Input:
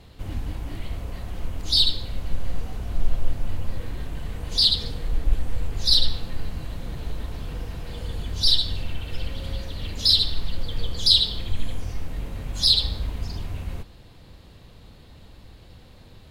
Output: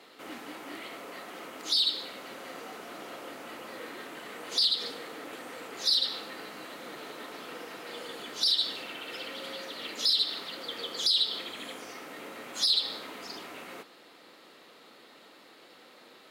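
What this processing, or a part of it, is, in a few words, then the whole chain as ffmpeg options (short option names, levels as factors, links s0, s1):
laptop speaker: -af "highpass=f=290:w=0.5412,highpass=f=290:w=1.3066,equalizer=f=1300:t=o:w=0.22:g=8.5,equalizer=f=2000:t=o:w=0.54:g=4.5,alimiter=limit=0.168:level=0:latency=1:release=123"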